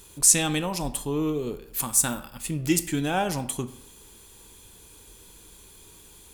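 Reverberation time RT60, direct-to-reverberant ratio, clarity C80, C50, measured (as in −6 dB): 0.75 s, 11.0 dB, 16.5 dB, 14.5 dB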